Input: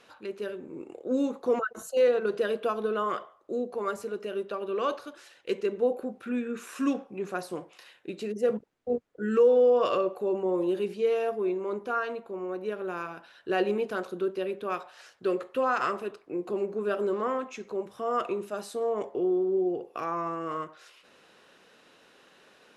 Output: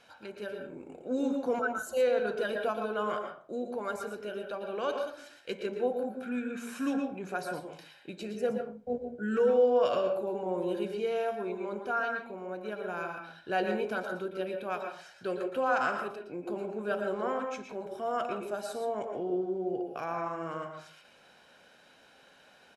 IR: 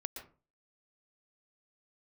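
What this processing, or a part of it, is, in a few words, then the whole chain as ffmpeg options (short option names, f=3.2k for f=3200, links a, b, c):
microphone above a desk: -filter_complex "[0:a]aecho=1:1:1.3:0.5[a];[1:a]atrim=start_sample=2205[b];[a][b]afir=irnorm=-1:irlink=0"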